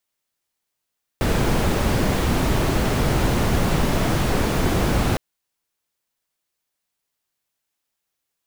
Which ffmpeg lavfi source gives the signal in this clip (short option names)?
-f lavfi -i "anoisesrc=c=brown:a=0.525:d=3.96:r=44100:seed=1"